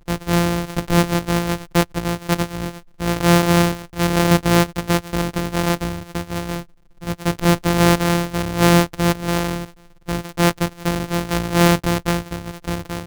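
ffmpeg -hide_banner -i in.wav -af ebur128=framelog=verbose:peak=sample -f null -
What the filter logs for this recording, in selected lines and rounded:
Integrated loudness:
  I:         -19.5 LUFS
  Threshold: -29.8 LUFS
Loudness range:
  LRA:         2.7 LU
  Threshold: -39.6 LUFS
  LRA low:   -21.1 LUFS
  LRA high:  -18.4 LUFS
Sample peak:
  Peak:       -4.3 dBFS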